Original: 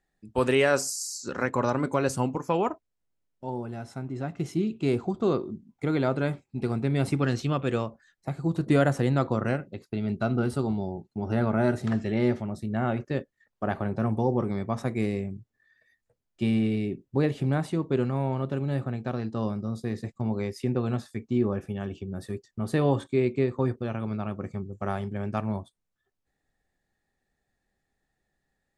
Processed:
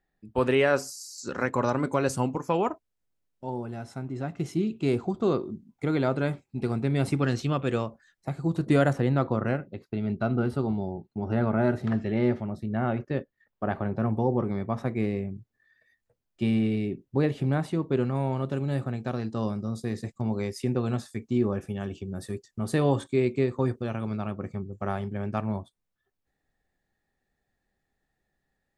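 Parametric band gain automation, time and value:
parametric band 8,200 Hz 1.5 octaves
−10 dB
from 0:01.18 0 dB
from 0:08.93 −12 dB
from 0:15.35 −3 dB
from 0:18.15 +5.5 dB
from 0:24.31 −4 dB

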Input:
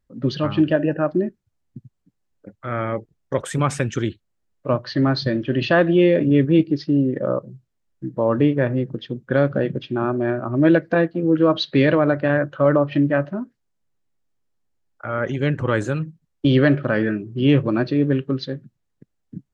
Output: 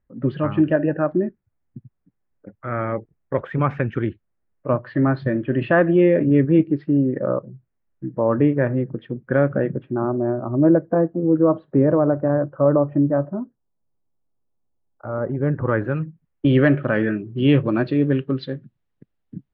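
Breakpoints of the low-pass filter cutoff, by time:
low-pass filter 24 dB per octave
0:09.60 2,200 Hz
0:10.09 1,100 Hz
0:15.22 1,100 Hz
0:15.99 2,300 Hz
0:17.41 3,700 Hz

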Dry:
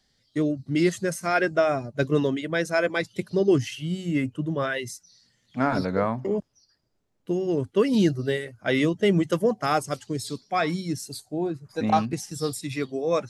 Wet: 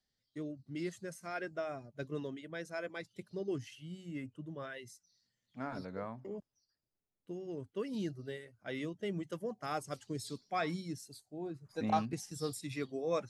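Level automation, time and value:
0:09.46 −17.5 dB
0:10.07 −10.5 dB
0:10.76 −10.5 dB
0:11.27 −18 dB
0:11.65 −10 dB

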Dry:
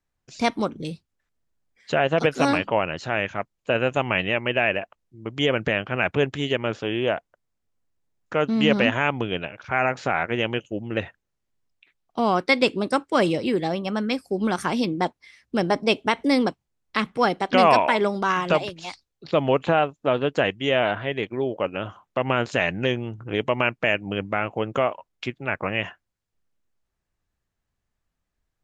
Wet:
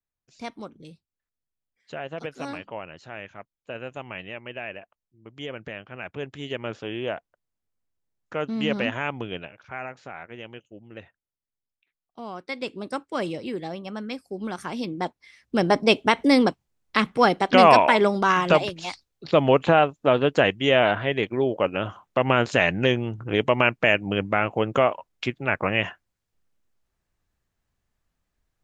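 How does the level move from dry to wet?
0:06.09 −13.5 dB
0:06.64 −6 dB
0:09.35 −6 dB
0:10.01 −15.5 dB
0:12.38 −15.5 dB
0:12.90 −8 dB
0:14.66 −8 dB
0:15.74 +2.5 dB

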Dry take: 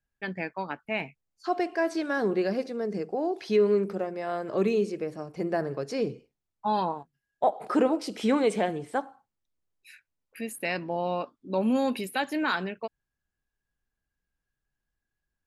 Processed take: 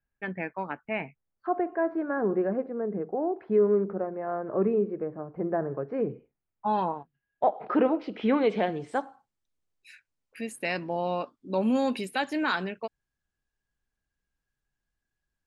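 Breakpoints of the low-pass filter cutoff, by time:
low-pass filter 24 dB per octave
0:00.88 2,600 Hz
0:01.61 1,500 Hz
0:05.81 1,500 Hz
0:06.72 3,000 Hz
0:08.25 3,000 Hz
0:08.73 4,900 Hz
0:08.95 9,500 Hz

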